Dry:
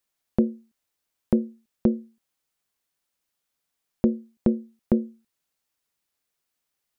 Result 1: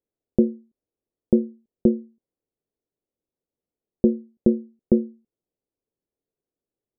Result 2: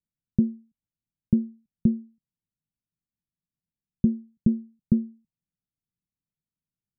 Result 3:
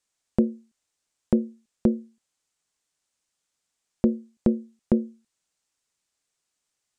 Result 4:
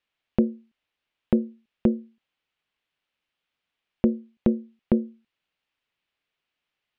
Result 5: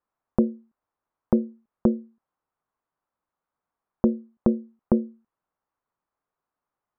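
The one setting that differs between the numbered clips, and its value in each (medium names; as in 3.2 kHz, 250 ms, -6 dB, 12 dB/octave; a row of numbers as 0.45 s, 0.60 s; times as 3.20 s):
resonant low-pass, frequency: 430 Hz, 170 Hz, 7.7 kHz, 2.9 kHz, 1.1 kHz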